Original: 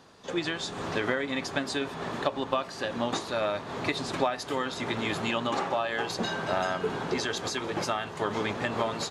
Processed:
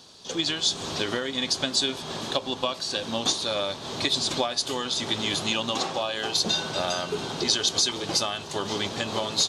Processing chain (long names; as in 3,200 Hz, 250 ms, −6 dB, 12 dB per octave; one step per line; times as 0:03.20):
high shelf with overshoot 2,900 Hz +11 dB, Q 1.5
wrong playback speed 25 fps video run at 24 fps